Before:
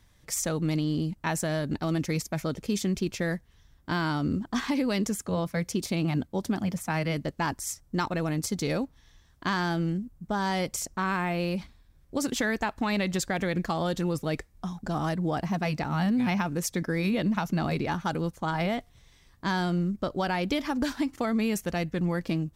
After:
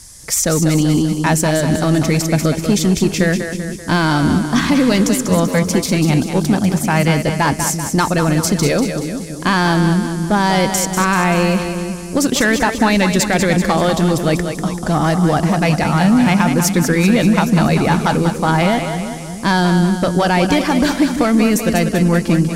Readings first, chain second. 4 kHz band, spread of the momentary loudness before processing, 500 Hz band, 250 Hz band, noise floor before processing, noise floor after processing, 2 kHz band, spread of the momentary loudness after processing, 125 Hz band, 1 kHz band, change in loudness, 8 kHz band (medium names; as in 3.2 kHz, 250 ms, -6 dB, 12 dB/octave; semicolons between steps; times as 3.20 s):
+14.0 dB, 5 LU, +14.0 dB, +14.0 dB, -60 dBFS, -26 dBFS, +14.0 dB, 5 LU, +14.5 dB, +14.0 dB, +14.0 dB, +15.5 dB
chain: sine folder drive 4 dB, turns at -14 dBFS; band noise 4.8–11 kHz -47 dBFS; two-band feedback delay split 360 Hz, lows 340 ms, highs 193 ms, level -7 dB; trim +6.5 dB